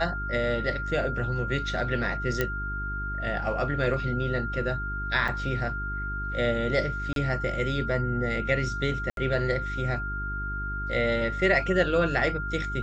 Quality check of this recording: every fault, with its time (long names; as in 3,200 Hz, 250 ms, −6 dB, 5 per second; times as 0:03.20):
mains hum 50 Hz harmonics 8 −34 dBFS
whistle 1,400 Hz −32 dBFS
0:02.41: click −11 dBFS
0:05.28: drop-out 4.8 ms
0:07.13–0:07.16: drop-out 32 ms
0:09.10–0:09.17: drop-out 72 ms